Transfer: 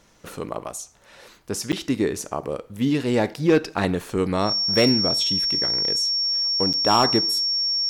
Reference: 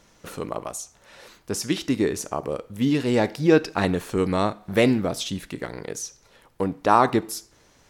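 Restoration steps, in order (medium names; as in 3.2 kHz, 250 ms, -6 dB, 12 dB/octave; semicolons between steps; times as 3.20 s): clip repair -10 dBFS; band-stop 5.5 kHz, Q 30; interpolate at 1.72/3.34/6.73 s, 7.6 ms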